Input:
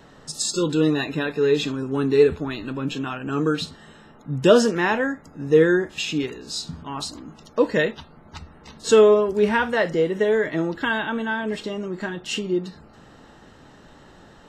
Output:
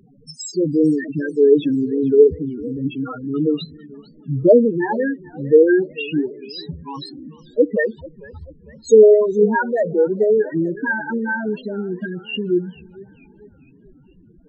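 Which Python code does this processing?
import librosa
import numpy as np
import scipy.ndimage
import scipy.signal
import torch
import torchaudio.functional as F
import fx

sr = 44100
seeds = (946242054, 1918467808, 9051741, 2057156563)

y = fx.peak_eq(x, sr, hz=240.0, db=5.5, octaves=1.3, at=(1.32, 1.87))
y = fx.spec_topn(y, sr, count=4)
y = fx.echo_warbled(y, sr, ms=445, feedback_pct=47, rate_hz=2.8, cents=182, wet_db=-21.5)
y = y * librosa.db_to_amplitude(5.0)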